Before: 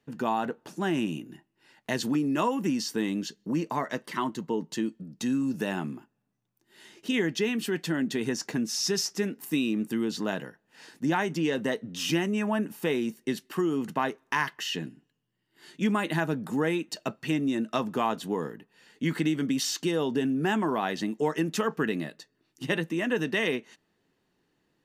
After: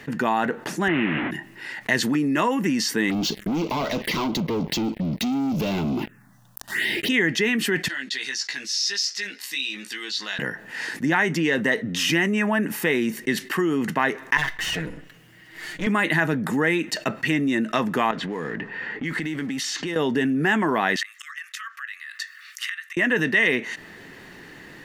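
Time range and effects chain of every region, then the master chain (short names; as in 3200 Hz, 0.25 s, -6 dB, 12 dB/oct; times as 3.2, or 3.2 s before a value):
0.88–1.31 delta modulation 16 kbps, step -30 dBFS + HPF 86 Hz + gate with hold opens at -25 dBFS, closes at -32 dBFS
3.1–7.09 compressor 2:1, threshold -47 dBFS + sample leveller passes 5 + envelope phaser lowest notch 350 Hz, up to 1800 Hz, full sweep at -30 dBFS
7.88–10.39 band-pass 4300 Hz, Q 2.6 + doubler 15 ms -3 dB
14.37–15.87 minimum comb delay 6.3 ms + resonator 730 Hz, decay 0.18 s, mix 50%
18.11–19.96 G.711 law mismatch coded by mu + low-pass opened by the level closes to 1400 Hz, open at -22.5 dBFS + compressor 3:1, threshold -42 dBFS
20.96–22.97 flipped gate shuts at -23 dBFS, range -25 dB + brick-wall FIR high-pass 1100 Hz + core saturation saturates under 2400 Hz
whole clip: bell 1900 Hz +11.5 dB 0.61 oct; fast leveller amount 50%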